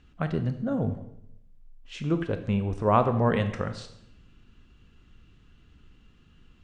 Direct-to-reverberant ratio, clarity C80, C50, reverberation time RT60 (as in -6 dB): 8.5 dB, 13.5 dB, 11.0 dB, 0.75 s